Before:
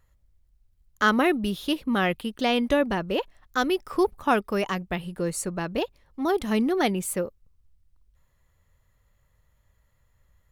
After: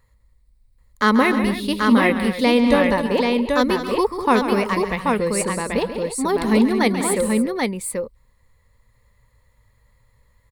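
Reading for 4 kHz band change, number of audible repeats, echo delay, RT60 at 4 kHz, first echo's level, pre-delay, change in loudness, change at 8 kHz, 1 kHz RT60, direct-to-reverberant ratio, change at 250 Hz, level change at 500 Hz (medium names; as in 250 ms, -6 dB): +4.5 dB, 4, 136 ms, no reverb, -11.0 dB, no reverb, +6.5 dB, +8.5 dB, no reverb, no reverb, +8.0 dB, +7.0 dB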